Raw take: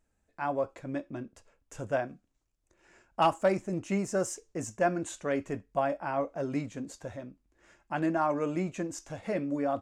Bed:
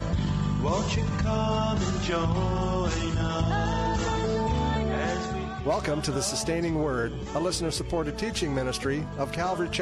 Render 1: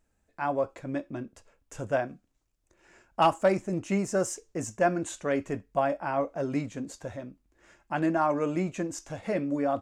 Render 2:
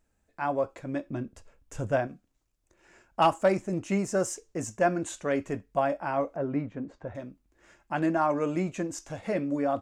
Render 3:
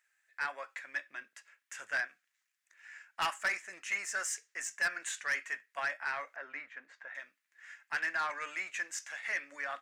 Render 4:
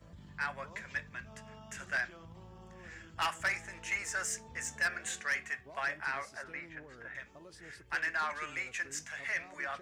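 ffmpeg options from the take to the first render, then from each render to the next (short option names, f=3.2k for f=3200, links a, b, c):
-af "volume=2.5dB"
-filter_complex "[0:a]asettb=1/sr,asplit=3[a][b][c];[a]atrim=end=1.064[d];[b]atrim=start=1.06:end=2.07,asetpts=PTS-STARTPTS,afade=t=in:d=0.004:c=qsin,afade=t=out:st=1.006:d=0.004:c=qsin,lowshelf=f=170:g=8.5[e];[c]atrim=start=2.066[f];[d][e]acrossfade=d=0.004:c1=hsin:c2=qsin[g];[g][f]acrossfade=d=0.004:c1=qsin:c2=hsin,asettb=1/sr,asplit=3[h][i][j];[h]atrim=end=6.364[k];[i]atrim=start=6.36:end=7.15,asetpts=PTS-STARTPTS,afade=t=in:d=0.004:c=qsin,afade=t=out:st=0.786:d=0.004:c=qsin,lowpass=1.7k[l];[j]atrim=start=7.146[m];[k][l]acrossfade=d=0.004:c1=hsin:c2=qsin[n];[n][m]acrossfade=d=0.004:c1=qsin:c2=hsin"
-af "highpass=f=1.8k:t=q:w=4,asoftclip=type=tanh:threshold=-26dB"
-filter_complex "[1:a]volume=-26.5dB[a];[0:a][a]amix=inputs=2:normalize=0"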